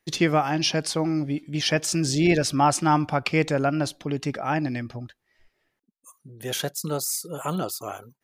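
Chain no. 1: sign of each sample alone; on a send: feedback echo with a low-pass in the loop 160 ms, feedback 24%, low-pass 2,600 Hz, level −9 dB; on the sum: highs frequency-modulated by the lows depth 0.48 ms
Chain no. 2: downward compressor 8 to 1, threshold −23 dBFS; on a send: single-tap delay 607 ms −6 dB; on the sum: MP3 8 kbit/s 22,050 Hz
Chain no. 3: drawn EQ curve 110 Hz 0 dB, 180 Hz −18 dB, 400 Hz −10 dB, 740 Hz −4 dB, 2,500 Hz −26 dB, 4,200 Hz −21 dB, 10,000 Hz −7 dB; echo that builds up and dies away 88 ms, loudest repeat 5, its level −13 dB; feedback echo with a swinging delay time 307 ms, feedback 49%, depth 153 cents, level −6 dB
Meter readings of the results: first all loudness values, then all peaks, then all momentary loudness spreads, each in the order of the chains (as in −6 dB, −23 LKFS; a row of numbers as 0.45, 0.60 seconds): −25.0, −30.0, −32.5 LKFS; −22.0, −13.5, −14.5 dBFS; 1, 9, 13 LU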